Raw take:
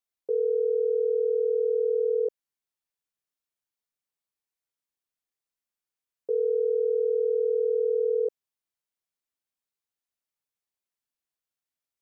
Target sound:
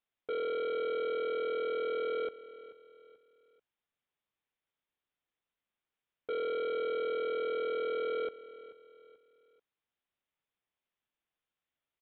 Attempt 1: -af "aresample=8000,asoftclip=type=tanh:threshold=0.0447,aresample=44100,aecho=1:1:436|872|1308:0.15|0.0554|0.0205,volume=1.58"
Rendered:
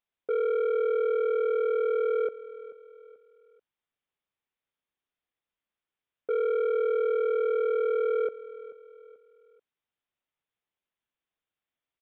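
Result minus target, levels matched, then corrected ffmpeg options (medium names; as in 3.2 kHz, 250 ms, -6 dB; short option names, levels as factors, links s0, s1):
saturation: distortion -6 dB
-af "aresample=8000,asoftclip=type=tanh:threshold=0.015,aresample=44100,aecho=1:1:436|872|1308:0.15|0.0554|0.0205,volume=1.58"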